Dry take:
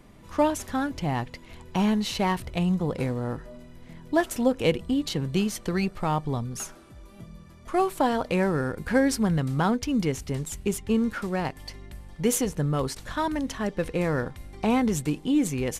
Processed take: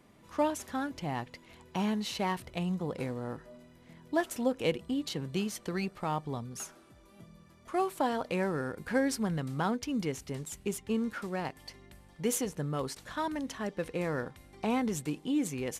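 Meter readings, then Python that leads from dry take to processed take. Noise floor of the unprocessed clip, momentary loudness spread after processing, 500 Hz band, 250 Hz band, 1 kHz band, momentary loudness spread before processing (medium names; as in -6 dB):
-49 dBFS, 9 LU, -6.5 dB, -7.5 dB, -6.0 dB, 10 LU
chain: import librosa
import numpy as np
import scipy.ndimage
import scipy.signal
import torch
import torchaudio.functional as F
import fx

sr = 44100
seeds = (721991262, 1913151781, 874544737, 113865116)

y = fx.highpass(x, sr, hz=160.0, slope=6)
y = y * 10.0 ** (-6.0 / 20.0)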